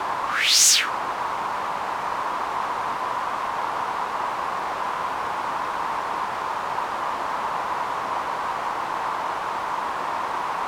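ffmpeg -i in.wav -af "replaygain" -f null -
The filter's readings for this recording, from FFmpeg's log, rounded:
track_gain = +10.5 dB
track_peak = 0.491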